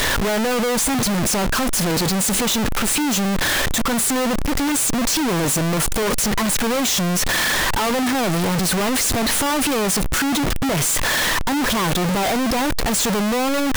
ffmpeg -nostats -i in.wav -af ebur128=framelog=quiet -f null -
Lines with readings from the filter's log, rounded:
Integrated loudness:
  I:         -18.8 LUFS
  Threshold: -28.8 LUFS
Loudness range:
  LRA:         0.6 LU
  Threshold: -38.7 LUFS
  LRA low:   -19.0 LUFS
  LRA high:  -18.4 LUFS